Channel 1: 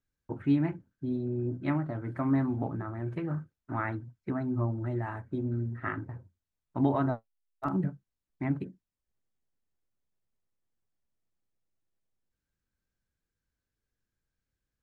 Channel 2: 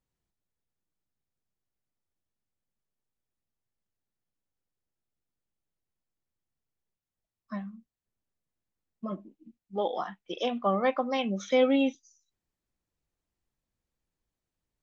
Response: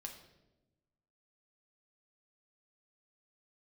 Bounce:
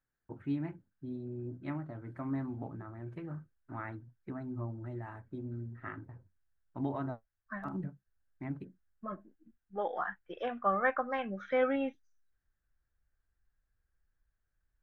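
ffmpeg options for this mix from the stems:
-filter_complex "[0:a]volume=-9dB[a];[1:a]bandreject=f=970:w=13,asubboost=boost=8:cutoff=74,lowpass=f=1.6k:t=q:w=6.3,volume=-5.5dB[b];[a][b]amix=inputs=2:normalize=0"

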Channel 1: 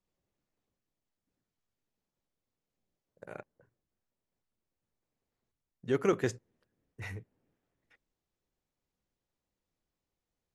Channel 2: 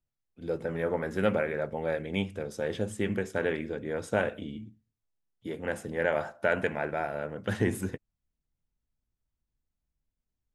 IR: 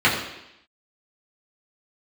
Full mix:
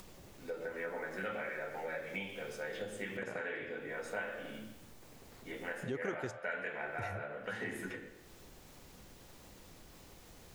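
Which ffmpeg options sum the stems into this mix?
-filter_complex "[0:a]acompressor=mode=upward:threshold=-31dB:ratio=2.5,volume=0.5dB[a];[1:a]highpass=f=950:p=1,volume=-5.5dB,asplit=2[b][c];[c]volume=-14dB[d];[2:a]atrim=start_sample=2205[e];[d][e]afir=irnorm=-1:irlink=0[f];[a][b][f]amix=inputs=3:normalize=0,acompressor=threshold=-39dB:ratio=3"

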